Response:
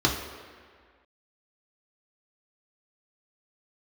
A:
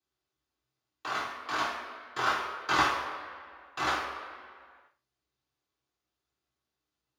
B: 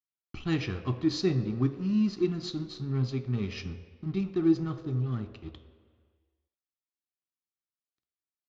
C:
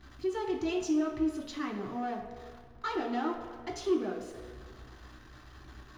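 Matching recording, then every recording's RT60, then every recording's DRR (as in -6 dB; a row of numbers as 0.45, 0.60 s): C; 1.8, 1.8, 1.8 s; -9.0, 6.0, -1.5 dB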